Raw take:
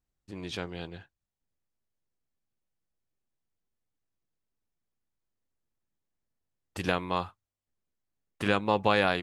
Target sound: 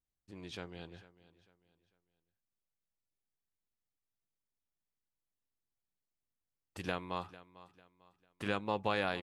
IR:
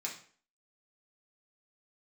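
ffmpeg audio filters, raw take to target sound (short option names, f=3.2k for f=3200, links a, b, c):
-af "aecho=1:1:448|896|1344:0.126|0.0428|0.0146,volume=-9dB"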